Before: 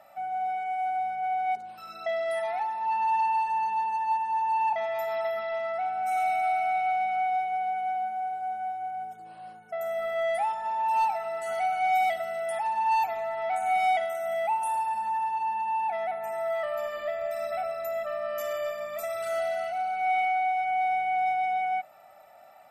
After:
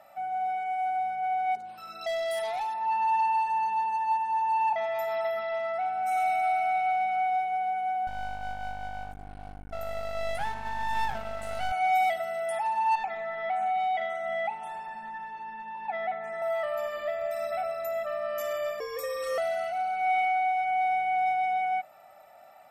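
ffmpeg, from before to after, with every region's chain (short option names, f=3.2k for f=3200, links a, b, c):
-filter_complex "[0:a]asettb=1/sr,asplit=3[a][b][c];[a]atrim=end=2.014[d];[b]atrim=start=2.01:end=2.74,asetpts=PTS-STARTPTS,afade=t=in:d=0.004:c=qsin,afade=t=out:st=0.726:d=0.004:c=qsin,highshelf=f=2.7k:t=q:w=1.5:g=7.5,volume=28dB,asoftclip=hard,volume=-28dB[e];[c]atrim=start=2.736[f];[d][e]acrossfade=d=0.004:c1=hsin:c2=qsin[g];[g][f]acrossfade=d=0.004:c1=qsin:c2=hsin,asettb=1/sr,asplit=3[h][i][j];[h]atrim=end=8.074[k];[i]atrim=start=8.07:end=11.72,asetpts=PTS-STARTPTS,afade=t=in:d=0.004:c=qsin,afade=t=out:st=3.646:d=0.004:c=qsin,aeval=exprs='val(0)+0.0112*(sin(2*PI*50*n/s)+sin(2*PI*2*50*n/s)/2+sin(2*PI*3*50*n/s)/3+sin(2*PI*4*50*n/s)/4+sin(2*PI*5*50*n/s)/5)':c=same,aeval=exprs='max(val(0),0)':c=same[l];[j]atrim=start=11.716[m];[k][l]acrossfade=d=0.004:c1=hsin:c2=qsin[n];[n][m]acrossfade=d=0.004:c1=qsin:c2=hsin,asettb=1/sr,asplit=3[o][p][q];[o]atrim=end=12.954[r];[p]atrim=start=12.95:end=16.42,asetpts=PTS-STARTPTS,afade=t=in:d=0.004:c=qsin,afade=t=out:st=3.466:d=0.004:c=qsin,lowpass=3.6k,aecho=1:1:5.1:0.74,atrim=end_sample=153027,acompressor=threshold=-25dB:ratio=6:attack=3.2:release=140:knee=1:detection=peak[s];[q]atrim=start=16.416[t];[r][s]acrossfade=d=0.004:c1=hsin:c2=qsin[u];[u][t]acrossfade=d=0.004:c1=qsin:c2=hsin,asettb=1/sr,asplit=3[v][w][x];[v]atrim=end=18.804[y];[w]atrim=start=18.8:end=19.38,asetpts=PTS-STARTPTS,afade=t=in:d=0.004:c=qsin,afade=t=out:st=0.576:d=0.004:c=qsin,aeval=exprs='val(0)+0.00398*sin(2*PI*5600*n/s)':c=same,equalizer=f=250:w=2:g=-8.5,afreqshift=-140[z];[x]atrim=start=19.376[aa];[y][z]acrossfade=d=0.004:c1=hsin:c2=qsin[ab];[ab][aa]acrossfade=d=0.004:c1=qsin:c2=hsin"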